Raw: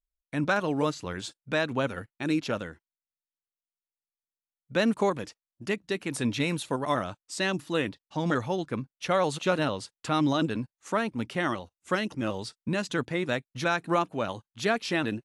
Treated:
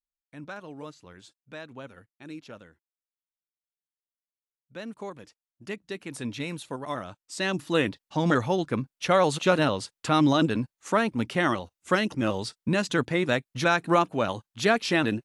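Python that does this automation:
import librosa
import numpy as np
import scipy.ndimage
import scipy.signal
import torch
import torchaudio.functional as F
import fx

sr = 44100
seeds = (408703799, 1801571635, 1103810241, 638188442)

y = fx.gain(x, sr, db=fx.line((4.89, -14.0), (5.76, -5.5), (7.03, -5.5), (7.76, 4.0)))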